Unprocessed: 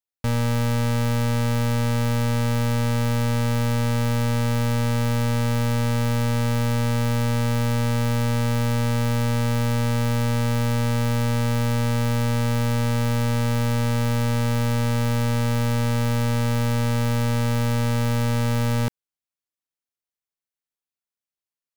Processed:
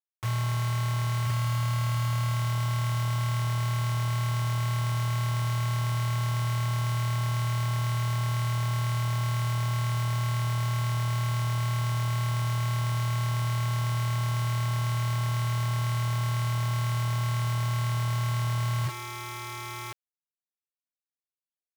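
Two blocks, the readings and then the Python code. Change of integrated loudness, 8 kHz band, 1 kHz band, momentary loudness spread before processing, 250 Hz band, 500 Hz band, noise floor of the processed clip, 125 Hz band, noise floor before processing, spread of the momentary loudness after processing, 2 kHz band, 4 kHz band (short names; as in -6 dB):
-5.5 dB, -4.5 dB, -3.5 dB, 0 LU, -16.5 dB, -15.5 dB, under -85 dBFS, -4.0 dB, under -85 dBFS, 0 LU, -5.5 dB, -4.0 dB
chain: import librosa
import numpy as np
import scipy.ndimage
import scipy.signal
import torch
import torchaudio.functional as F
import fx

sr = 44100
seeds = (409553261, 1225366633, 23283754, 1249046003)

p1 = x + fx.echo_feedback(x, sr, ms=1049, feedback_pct=25, wet_db=-13, dry=0)
p2 = fx.spec_topn(p1, sr, count=1)
p3 = p2 + 10.0 ** (-42.0 / 20.0) * np.sin(2.0 * np.pi * 1100.0 * np.arange(len(p2)) / sr)
p4 = fx.quant_dither(p3, sr, seeds[0], bits=6, dither='none')
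y = F.gain(torch.from_numpy(p4), 2.0).numpy()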